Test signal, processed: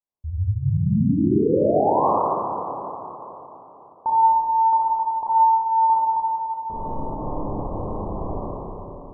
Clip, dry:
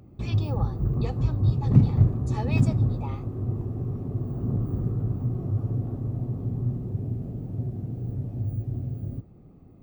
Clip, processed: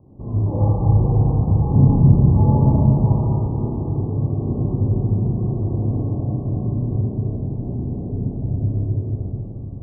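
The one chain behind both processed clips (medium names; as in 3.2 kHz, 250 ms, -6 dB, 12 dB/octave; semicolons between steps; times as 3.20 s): steep low-pass 1.1 kHz 96 dB/octave; hum notches 60/120/180/240 Hz; Schroeder reverb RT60 3.7 s, combs from 29 ms, DRR -9 dB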